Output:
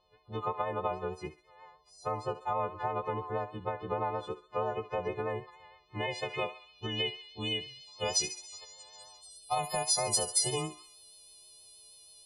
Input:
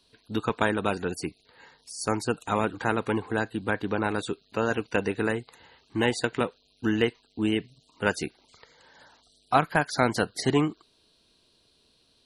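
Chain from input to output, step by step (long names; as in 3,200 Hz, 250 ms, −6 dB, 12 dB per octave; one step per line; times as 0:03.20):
every partial snapped to a pitch grid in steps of 3 semitones
brickwall limiter −16 dBFS, peak gain reduction 11 dB
on a send: feedback echo with a high-pass in the loop 68 ms, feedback 54%, high-pass 740 Hz, level −12.5 dB
on the sum: pitch vibrato 6.3 Hz 28 cents
low-pass filter sweep 1,400 Hz → 10,000 Hz, 0:05.38–0:09.35
downward compressor, threshold −23 dBFS, peak gain reduction 6.5 dB
phaser with its sweep stopped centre 640 Hz, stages 4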